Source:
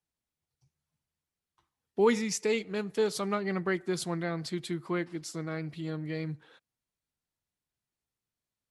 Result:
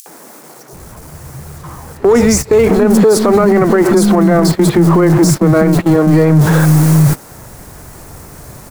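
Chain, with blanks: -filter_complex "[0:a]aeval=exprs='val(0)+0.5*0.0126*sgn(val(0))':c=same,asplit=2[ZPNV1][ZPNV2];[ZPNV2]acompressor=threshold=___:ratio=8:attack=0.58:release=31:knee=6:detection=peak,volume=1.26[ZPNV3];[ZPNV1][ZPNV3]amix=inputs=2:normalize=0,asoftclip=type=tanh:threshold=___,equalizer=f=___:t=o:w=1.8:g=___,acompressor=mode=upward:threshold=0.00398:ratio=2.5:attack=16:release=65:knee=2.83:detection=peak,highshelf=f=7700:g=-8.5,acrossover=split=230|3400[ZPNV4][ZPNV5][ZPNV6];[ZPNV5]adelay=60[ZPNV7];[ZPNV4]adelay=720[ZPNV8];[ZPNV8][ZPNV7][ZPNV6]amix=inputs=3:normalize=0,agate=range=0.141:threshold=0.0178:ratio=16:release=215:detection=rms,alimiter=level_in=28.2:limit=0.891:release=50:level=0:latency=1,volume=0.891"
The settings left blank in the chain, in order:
0.0112, 0.126, 3200, -14.5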